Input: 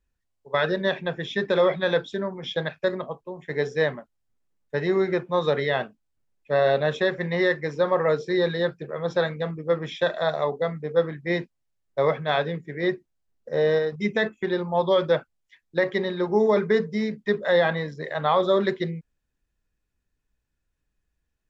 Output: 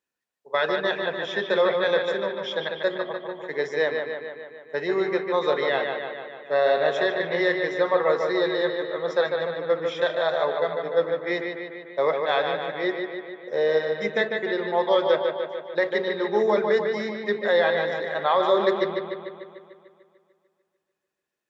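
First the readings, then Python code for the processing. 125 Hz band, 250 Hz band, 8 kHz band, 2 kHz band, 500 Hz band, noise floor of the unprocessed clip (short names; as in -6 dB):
-11.0 dB, -3.0 dB, n/a, +1.5 dB, +0.5 dB, -78 dBFS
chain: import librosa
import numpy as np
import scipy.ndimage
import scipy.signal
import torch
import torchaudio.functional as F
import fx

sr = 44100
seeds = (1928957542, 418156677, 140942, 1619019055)

y = scipy.signal.sosfilt(scipy.signal.butter(2, 340.0, 'highpass', fs=sr, output='sos'), x)
y = fx.echo_bbd(y, sr, ms=148, stages=4096, feedback_pct=63, wet_db=-5)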